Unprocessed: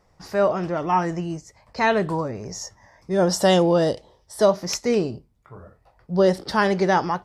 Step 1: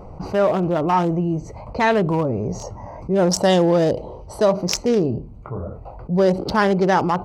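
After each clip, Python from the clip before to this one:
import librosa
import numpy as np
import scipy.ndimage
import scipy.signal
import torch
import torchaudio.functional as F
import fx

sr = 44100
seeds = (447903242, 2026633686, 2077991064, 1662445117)

y = fx.wiener(x, sr, points=25)
y = fx.env_flatten(y, sr, amount_pct=50)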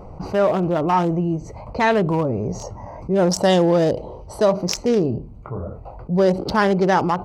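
y = fx.end_taper(x, sr, db_per_s=220.0)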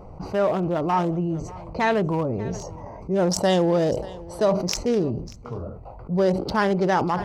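y = x + 10.0 ** (-20.0 / 20.0) * np.pad(x, (int(589 * sr / 1000.0), 0))[:len(x)]
y = fx.sustainer(y, sr, db_per_s=78.0)
y = y * 10.0 ** (-4.0 / 20.0)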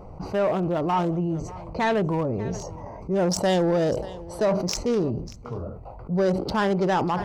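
y = 10.0 ** (-14.5 / 20.0) * np.tanh(x / 10.0 ** (-14.5 / 20.0))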